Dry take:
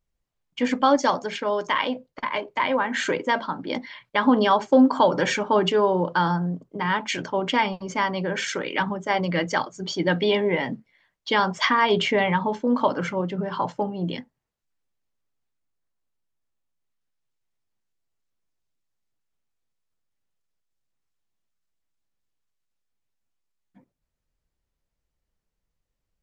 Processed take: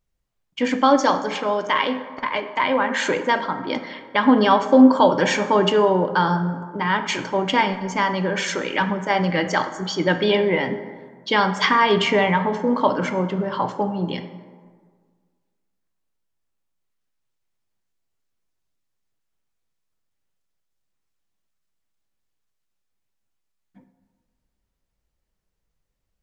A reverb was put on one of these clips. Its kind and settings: plate-style reverb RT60 1.7 s, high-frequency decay 0.45×, DRR 8 dB; gain +2.5 dB

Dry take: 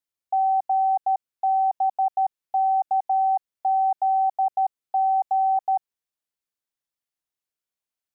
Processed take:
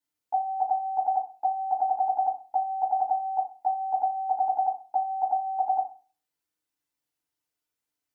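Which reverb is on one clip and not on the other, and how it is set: FDN reverb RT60 0.36 s, low-frequency decay 1.25×, high-frequency decay 0.75×, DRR -7 dB; gain -4 dB

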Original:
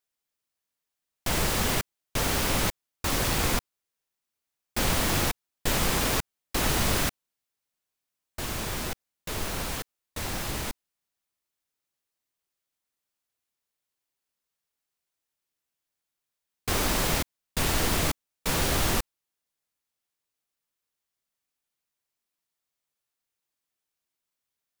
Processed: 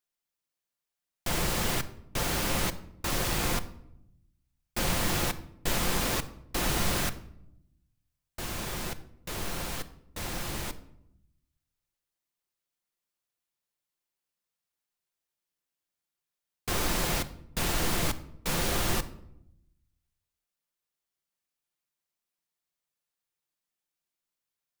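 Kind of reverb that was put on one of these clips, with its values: shoebox room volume 2000 m³, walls furnished, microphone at 0.86 m; gain -3.5 dB

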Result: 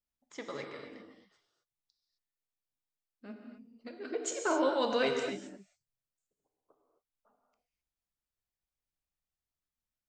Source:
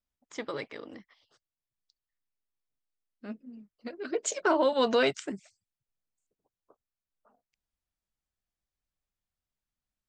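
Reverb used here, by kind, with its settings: non-linear reverb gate 0.29 s flat, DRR 2.5 dB; gain -6 dB

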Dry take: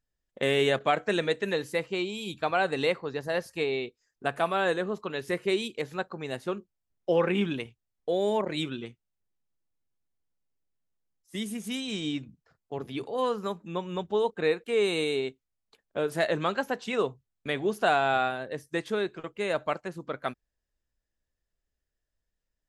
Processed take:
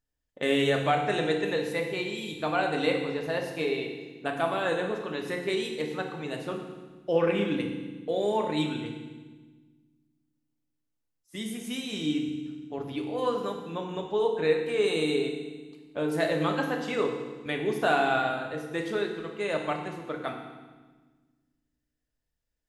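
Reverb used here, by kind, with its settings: FDN reverb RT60 1.3 s, low-frequency decay 1.6×, high-frequency decay 1×, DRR 1.5 dB; gain -2.5 dB

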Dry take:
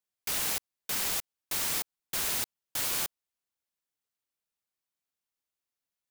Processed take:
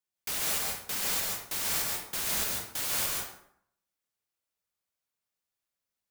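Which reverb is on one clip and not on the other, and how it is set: plate-style reverb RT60 0.68 s, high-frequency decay 0.65×, pre-delay 0.12 s, DRR -1.5 dB; gain -2 dB

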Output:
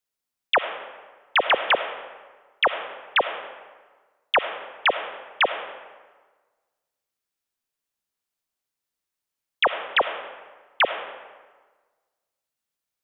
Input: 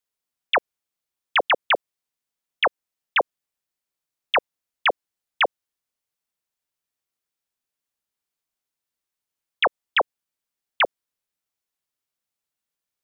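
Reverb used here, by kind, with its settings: digital reverb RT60 1.4 s, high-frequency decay 0.65×, pre-delay 25 ms, DRR 9 dB

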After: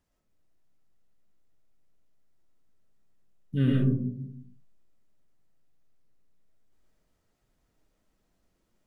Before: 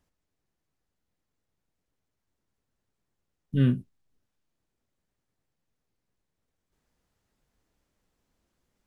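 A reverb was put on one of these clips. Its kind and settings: digital reverb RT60 0.69 s, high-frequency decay 0.25×, pre-delay 60 ms, DRR -2.5 dB; gain -3 dB

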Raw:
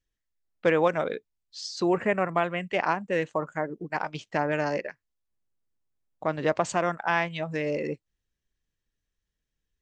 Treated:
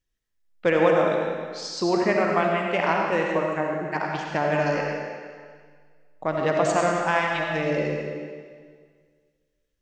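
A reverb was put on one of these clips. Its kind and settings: digital reverb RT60 1.8 s, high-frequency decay 0.95×, pre-delay 30 ms, DRR -0.5 dB; gain +1 dB

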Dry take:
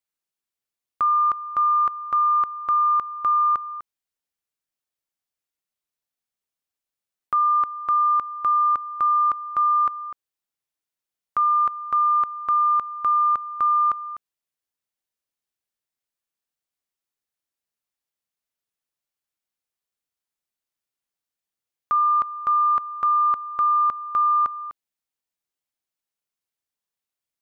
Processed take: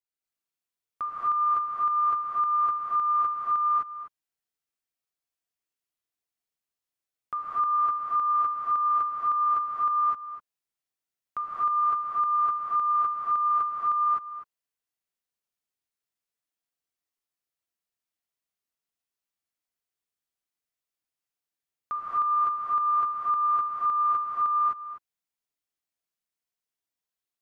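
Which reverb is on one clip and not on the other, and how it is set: non-linear reverb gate 0.28 s rising, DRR -7 dB; gain -10 dB

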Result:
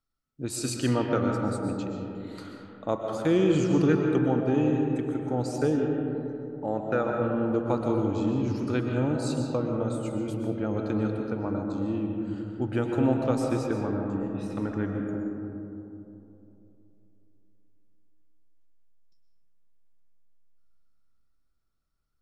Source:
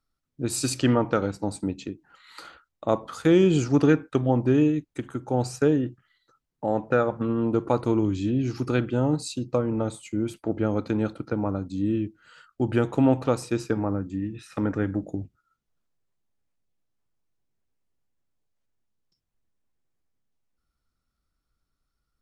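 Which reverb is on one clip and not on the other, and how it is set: digital reverb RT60 3.1 s, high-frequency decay 0.3×, pre-delay 85 ms, DRR 1.5 dB; gain -5 dB

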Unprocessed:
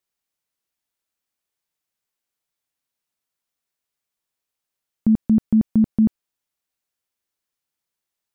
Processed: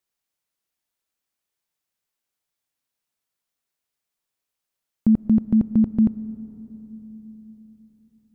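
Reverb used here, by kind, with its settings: digital reverb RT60 4.4 s, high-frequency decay 0.3×, pre-delay 70 ms, DRR 17 dB

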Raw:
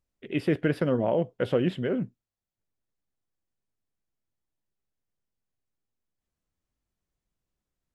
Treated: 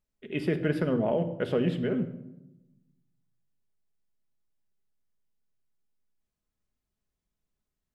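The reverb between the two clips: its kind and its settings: shoebox room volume 3500 m³, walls furnished, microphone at 1.4 m; gain -2.5 dB

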